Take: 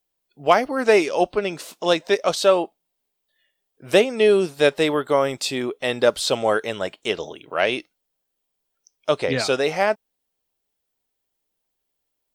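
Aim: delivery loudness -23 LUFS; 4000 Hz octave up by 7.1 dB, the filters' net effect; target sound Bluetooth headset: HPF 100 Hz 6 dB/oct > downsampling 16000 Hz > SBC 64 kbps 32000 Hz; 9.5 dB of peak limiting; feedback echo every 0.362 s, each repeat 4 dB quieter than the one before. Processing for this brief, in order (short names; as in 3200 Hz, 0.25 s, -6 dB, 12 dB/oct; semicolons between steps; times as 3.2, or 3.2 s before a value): bell 4000 Hz +8.5 dB; limiter -10 dBFS; HPF 100 Hz 6 dB/oct; feedback echo 0.362 s, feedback 63%, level -4 dB; downsampling 16000 Hz; gain -1.5 dB; SBC 64 kbps 32000 Hz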